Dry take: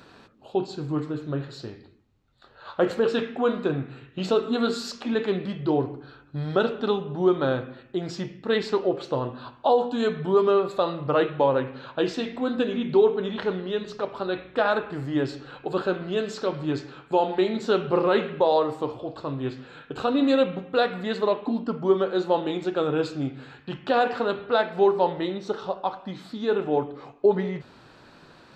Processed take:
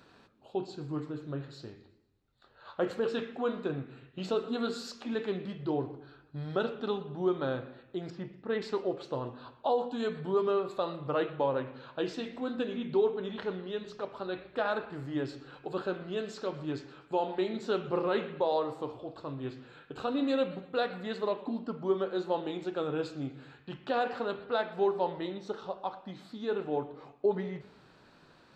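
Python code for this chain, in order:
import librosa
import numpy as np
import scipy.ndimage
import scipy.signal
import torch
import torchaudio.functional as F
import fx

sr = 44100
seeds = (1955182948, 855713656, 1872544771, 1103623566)

y = fx.lowpass(x, sr, hz=2300.0, slope=12, at=(8.1, 8.62))
y = fx.echo_warbled(y, sr, ms=121, feedback_pct=48, rate_hz=2.8, cents=135, wet_db=-21.0)
y = y * librosa.db_to_amplitude(-8.5)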